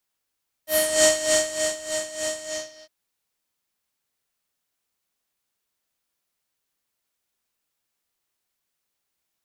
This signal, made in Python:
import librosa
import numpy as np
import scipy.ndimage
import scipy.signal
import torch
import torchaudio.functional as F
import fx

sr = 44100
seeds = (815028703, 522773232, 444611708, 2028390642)

y = fx.sub_patch_tremolo(sr, seeds[0], note=75, wave='square', wave2='saw', interval_st=0, detune_cents=16, level2_db=-14.5, sub_db=-15.0, noise_db=-1.0, kind='lowpass', cutoff_hz=5000.0, q=3.6, env_oct=1.5, env_decay_s=0.29, env_sustain_pct=40, attack_ms=180.0, decay_s=0.92, sustain_db=-12.0, release_s=0.47, note_s=1.74, lfo_hz=3.3, tremolo_db=13.0)